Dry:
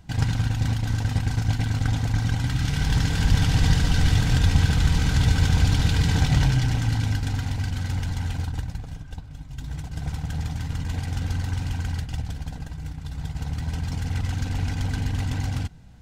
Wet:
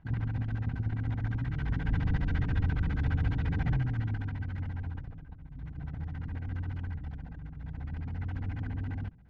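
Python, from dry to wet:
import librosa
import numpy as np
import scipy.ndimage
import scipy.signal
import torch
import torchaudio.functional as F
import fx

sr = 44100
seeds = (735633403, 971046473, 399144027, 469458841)

y = fx.filter_lfo_lowpass(x, sr, shape='square', hz=8.4, low_hz=320.0, high_hz=1800.0, q=1.5)
y = fx.stretch_vocoder(y, sr, factor=0.58)
y = y * 10.0 ** (-8.0 / 20.0)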